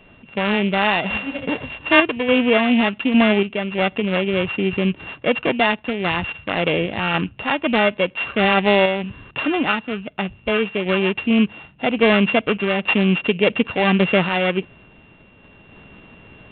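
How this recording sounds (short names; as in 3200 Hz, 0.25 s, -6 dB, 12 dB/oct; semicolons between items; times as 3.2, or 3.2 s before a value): a buzz of ramps at a fixed pitch in blocks of 16 samples; random-step tremolo; G.726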